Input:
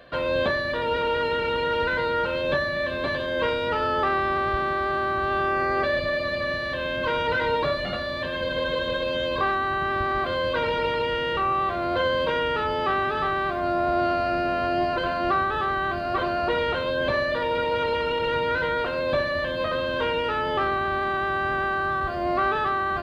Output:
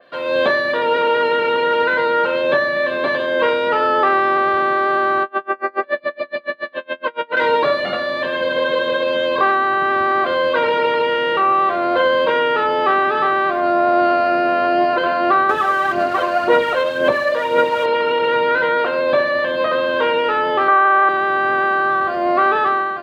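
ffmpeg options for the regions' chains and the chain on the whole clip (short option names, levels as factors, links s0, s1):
-filter_complex "[0:a]asettb=1/sr,asplit=3[s0][s1][s2];[s0]atrim=end=5.234[s3];[s1]atrim=start=5.23:end=7.37,asetpts=PTS-STARTPTS,afade=t=in:d=0.004:c=qsin,afade=t=out:st=2.136:d=0.004:c=qsin,highpass=190,lowpass=3000,aeval=exprs='val(0)*pow(10,-35*(0.5-0.5*cos(2*PI*7.1*n/s))/20)':c=same[s4];[s2]atrim=start=7.366[s5];[s3][s4]acrossfade=d=0.004:c1=hsin:c2=qsin[s6];[s6][s5]acrossfade=d=0.004:c1=qsin:c2=hsin,asettb=1/sr,asplit=3[s7][s8][s9];[s7]atrim=end=15.494[s10];[s8]atrim=start=15.49:end=17.86,asetpts=PTS-STARTPTS,afade=t=in:d=0.004:c=qsin,afade=t=out:st=2.366:d=0.004:c=qsin,aphaser=in_gain=1:out_gain=1:delay=1.9:decay=0.5:speed=1.9:type=sinusoidal,aeval=exprs='sgn(val(0))*max(abs(val(0))-0.0106,0)':c=same[s11];[s9]atrim=start=17.856[s12];[s10][s11]acrossfade=d=0.004:c1=hsin:c2=qsin[s13];[s13][s12]acrossfade=d=0.004:c1=qsin:c2=hsin,asettb=1/sr,asplit=3[s14][s15][s16];[s14]atrim=end=20.684[s17];[s15]atrim=start=20.68:end=21.09,asetpts=PTS-STARTPTS,afade=t=in:d=0.004:c=qsin,afade=t=out:st=0.406:d=0.004:c=qsin,highpass=380,lowpass=3000,equalizer=f=1200:t=o:w=1.6:g=7[s18];[s16]atrim=start=21.086[s19];[s17][s18]acrossfade=d=0.004:c1=hsin:c2=qsin[s20];[s20][s19]acrossfade=d=0.004:c1=qsin:c2=hsin,highpass=290,dynaudnorm=f=120:g=5:m=2.82,adynamicequalizer=threshold=0.0224:dfrequency=2900:dqfactor=0.7:tfrequency=2900:tqfactor=0.7:attack=5:release=100:ratio=0.375:range=3.5:mode=cutabove:tftype=highshelf"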